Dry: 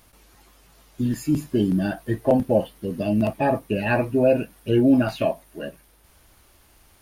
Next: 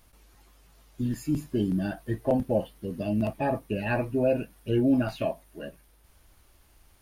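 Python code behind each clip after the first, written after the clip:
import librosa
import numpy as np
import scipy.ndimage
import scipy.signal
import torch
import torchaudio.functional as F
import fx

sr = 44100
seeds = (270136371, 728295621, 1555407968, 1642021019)

y = fx.low_shelf(x, sr, hz=70.0, db=8.5)
y = y * 10.0 ** (-6.5 / 20.0)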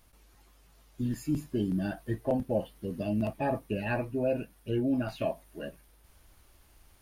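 y = fx.rider(x, sr, range_db=3, speed_s=0.5)
y = y * 10.0 ** (-3.5 / 20.0)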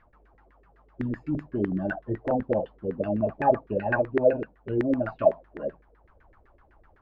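y = fx.dynamic_eq(x, sr, hz=4300.0, q=1.1, threshold_db=-58.0, ratio=4.0, max_db=6)
y = fx.filter_lfo_lowpass(y, sr, shape='saw_down', hz=7.9, low_hz=370.0, high_hz=1900.0, q=5.9)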